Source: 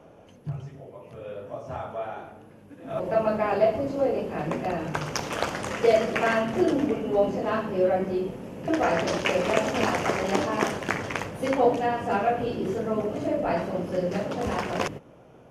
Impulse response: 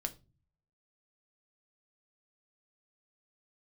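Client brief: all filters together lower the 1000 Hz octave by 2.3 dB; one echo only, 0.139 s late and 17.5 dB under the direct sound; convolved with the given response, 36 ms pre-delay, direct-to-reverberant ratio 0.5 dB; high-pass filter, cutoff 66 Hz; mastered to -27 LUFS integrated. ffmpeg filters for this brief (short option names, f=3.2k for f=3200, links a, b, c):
-filter_complex "[0:a]highpass=66,equalizer=f=1k:t=o:g=-3.5,aecho=1:1:139:0.133,asplit=2[a][b];[1:a]atrim=start_sample=2205,adelay=36[c];[b][c]afir=irnorm=-1:irlink=0,volume=-0.5dB[d];[a][d]amix=inputs=2:normalize=0,volume=-2.5dB"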